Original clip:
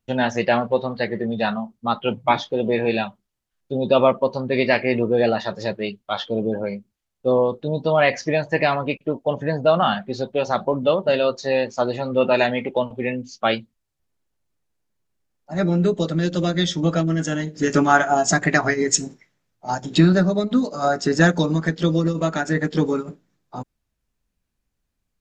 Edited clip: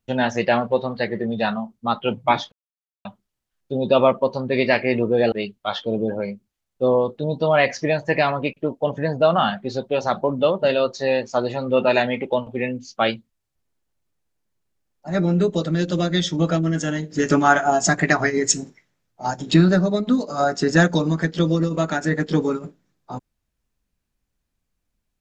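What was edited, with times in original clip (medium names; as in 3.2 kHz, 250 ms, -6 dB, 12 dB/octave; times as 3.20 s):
2.52–3.05 s: mute
5.32–5.76 s: delete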